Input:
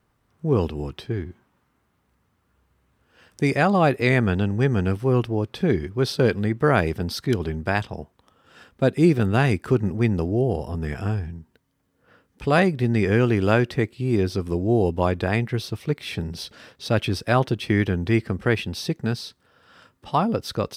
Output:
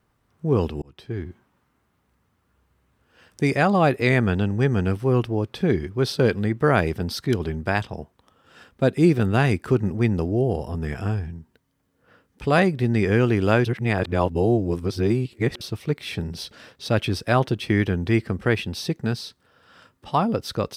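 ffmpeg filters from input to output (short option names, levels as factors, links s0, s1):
-filter_complex "[0:a]asplit=4[s0][s1][s2][s3];[s0]atrim=end=0.82,asetpts=PTS-STARTPTS,afade=t=out:st=0.816:d=0.004:c=hsin[s4];[s1]atrim=start=0.82:end=13.652,asetpts=PTS-STARTPTS,afade=t=in:d=0.44[s5];[s2]atrim=start=13.648:end=15.612,asetpts=PTS-STARTPTS,areverse[s6];[s3]atrim=start=15.608[s7];[s4][s5]concat=n=2:v=0:a=1[s8];[s8][s6]acrossfade=d=0.004:c1=hsin:c2=hsin[s9];[s9][s7]acrossfade=d=0.004:c1=hsin:c2=hsin"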